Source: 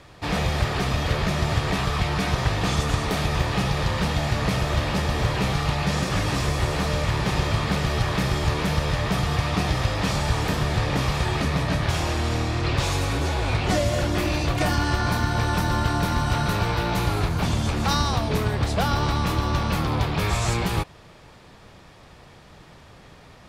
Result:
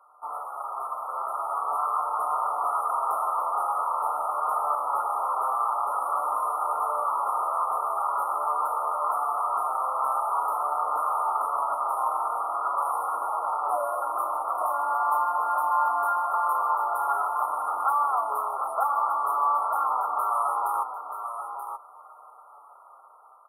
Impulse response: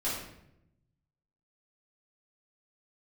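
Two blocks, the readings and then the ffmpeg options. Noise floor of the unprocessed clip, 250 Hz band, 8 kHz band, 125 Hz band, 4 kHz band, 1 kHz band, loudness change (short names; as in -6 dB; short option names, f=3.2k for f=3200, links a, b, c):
-48 dBFS, under -30 dB, -12.0 dB, under -40 dB, under -40 dB, +5.5 dB, -2.5 dB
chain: -filter_complex "[0:a]highpass=f=950:w=0.5412,highpass=f=950:w=1.3066,aemphasis=mode=reproduction:type=50fm,afftfilt=real='re*(1-between(b*sr/4096,1400,9100))':imag='im*(1-between(b*sr/4096,1400,9100))':win_size=4096:overlap=0.75,highshelf=f=2k:g=-8,dynaudnorm=f=580:g=5:m=8dB,asplit=2[a][b];[b]alimiter=limit=-23.5dB:level=0:latency=1:release=31,volume=-1.5dB[c];[a][c]amix=inputs=2:normalize=0,aexciter=amount=2.4:drive=4.8:freq=5.7k,flanger=delay=6.5:depth=1.1:regen=54:speed=0.45:shape=sinusoidal,aecho=1:1:930:0.398,volume=2dB"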